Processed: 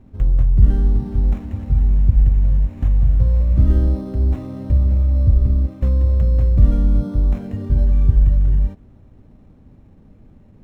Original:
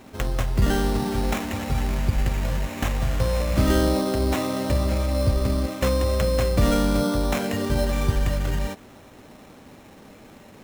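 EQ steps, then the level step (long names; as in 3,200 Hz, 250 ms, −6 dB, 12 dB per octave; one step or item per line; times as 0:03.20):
RIAA equalisation playback
low-shelf EQ 330 Hz +9.5 dB
high-shelf EQ 11,000 Hz +8.5 dB
−15.5 dB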